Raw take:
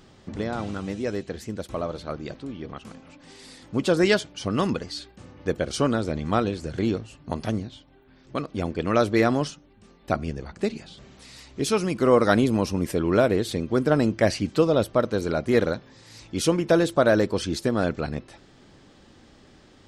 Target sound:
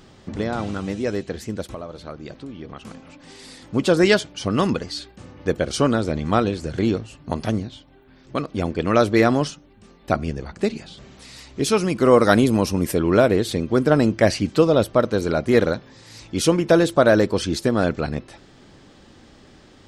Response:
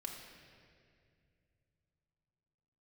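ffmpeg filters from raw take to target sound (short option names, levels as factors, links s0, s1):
-filter_complex "[0:a]asettb=1/sr,asplit=3[s0][s1][s2];[s0]atrim=end=1.694[s3];[s1]atrim=start=1.69:end=2.79,asetpts=PTS-STARTPTS,afade=t=in:d=0.004:c=qsin,afade=t=out:st=1.096:d=0.004:c=qsin,acompressor=threshold=0.0141:ratio=3[s4];[s2]atrim=start=2.786[s5];[s3][s4]acrossfade=d=0.004:c1=hsin:c2=qsin[s6];[s6][s5]acrossfade=d=0.004:c1=qsin:c2=hsin,asettb=1/sr,asplit=3[s7][s8][s9];[s7]atrim=end=12.054[s10];[s8]atrim=start=12.05:end=12.98,asetpts=PTS-STARTPTS,afade=t=in:d=0.004:c=qsin,afade=t=out:st=0.926:d=0.004:c=qsin,highshelf=f=11000:g=11[s11];[s9]atrim=start=12.976[s12];[s10][s11]acrossfade=d=0.004:c1=hsin:c2=qsin[s13];[s13][s12]acrossfade=d=0.004:c1=qsin:c2=hsin,volume=1.58"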